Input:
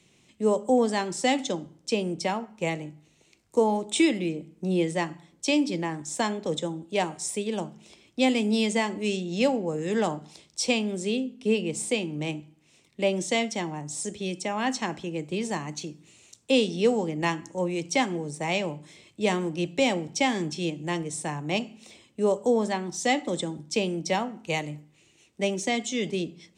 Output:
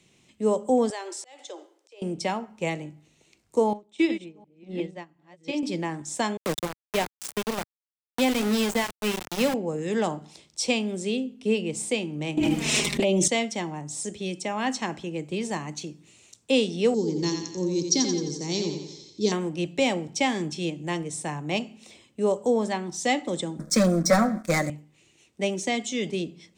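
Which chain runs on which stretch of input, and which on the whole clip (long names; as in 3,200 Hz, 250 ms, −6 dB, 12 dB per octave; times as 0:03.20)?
0:00.90–0:02.02: Butterworth high-pass 360 Hz 48 dB per octave + downward compressor 3 to 1, threshold −33 dBFS + volume swells 396 ms
0:03.73–0:05.63: delay that plays each chunk backwards 357 ms, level −5 dB + high-frequency loss of the air 95 metres + expander for the loud parts 2.5 to 1, over −32 dBFS
0:06.37–0:09.54: low-shelf EQ 69 Hz +10.5 dB + centre clipping without the shift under −25.5 dBFS + multiband upward and downward compressor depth 40%
0:12.37–0:13.28: flanger swept by the level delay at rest 5.2 ms, full sweep at −23 dBFS + envelope flattener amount 100%
0:16.94–0:19.32: drawn EQ curve 140 Hz 0 dB, 410 Hz +5 dB, 610 Hz −16 dB, 990 Hz −11 dB, 2,700 Hz −13 dB, 4,400 Hz +12 dB, 6,500 Hz +9 dB, 11,000 Hz −29 dB + feedback echo with a high-pass in the loop 87 ms, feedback 53%, high-pass 160 Hz, level −6 dB
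0:23.59–0:24.70: comb filter 5.4 ms, depth 62% + leveller curve on the samples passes 3 + phaser with its sweep stopped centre 580 Hz, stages 8
whole clip: no processing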